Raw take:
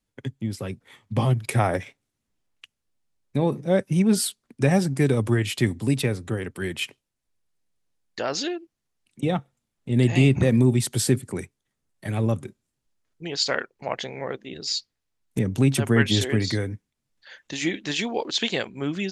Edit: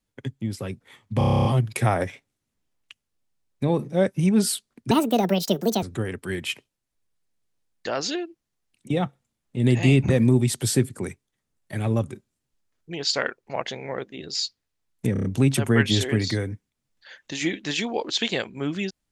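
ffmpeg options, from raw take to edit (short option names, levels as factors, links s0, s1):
-filter_complex "[0:a]asplit=16[s0][s1][s2][s3][s4][s5][s6][s7][s8][s9][s10][s11][s12][s13][s14][s15];[s0]atrim=end=1.212[s16];[s1]atrim=start=1.178:end=1.212[s17];[s2]atrim=start=1.178:end=1.212[s18];[s3]atrim=start=1.178:end=1.212[s19];[s4]atrim=start=1.178:end=1.212[s20];[s5]atrim=start=1.178:end=1.212[s21];[s6]atrim=start=1.178:end=1.212[s22];[s7]atrim=start=1.178:end=1.212[s23];[s8]atrim=start=1.178:end=1.212[s24];[s9]atrim=start=1.178:end=4.644[s25];[s10]atrim=start=4.64:end=6.15,asetpts=PTS-STARTPTS,asetrate=72765,aresample=44100,atrim=end_sample=40358,asetpts=PTS-STARTPTS[s26];[s11]atrim=start=6.146:end=15.482[s27];[s12]atrim=start=15.448:end=15.482[s28];[s13]atrim=start=15.448:end=15.482[s29];[s14]atrim=start=15.448:end=15.482[s30];[s15]atrim=start=15.448[s31];[s16][s17]acrossfade=d=0.004:c1=hsin:c2=hsin[s32];[s32][s18]acrossfade=d=0.004:c1=hsin:c2=hsin[s33];[s33][s19]acrossfade=d=0.004:c1=hsin:c2=hsin[s34];[s34][s20]acrossfade=d=0.004:c1=hsin:c2=hsin[s35];[s35][s21]acrossfade=d=0.004:c1=hsin:c2=hsin[s36];[s36][s22]acrossfade=d=0.004:c1=hsin:c2=hsin[s37];[s37][s23]acrossfade=d=0.004:c1=hsin:c2=hsin[s38];[s38][s24]acrossfade=d=0.004:c1=hsin:c2=hsin[s39];[s39][s25]acrossfade=d=0.004:c1=hsin:c2=hsin[s40];[s40][s26]acrossfade=d=0.004:c1=hsin:c2=hsin[s41];[s41][s27]acrossfade=d=0.004:c1=hsin:c2=hsin[s42];[s42][s28]acrossfade=d=0.004:c1=hsin:c2=hsin[s43];[s43][s29]acrossfade=d=0.004:c1=hsin:c2=hsin[s44];[s44][s30]acrossfade=d=0.004:c1=hsin:c2=hsin[s45];[s45][s31]acrossfade=d=0.004:c1=hsin:c2=hsin"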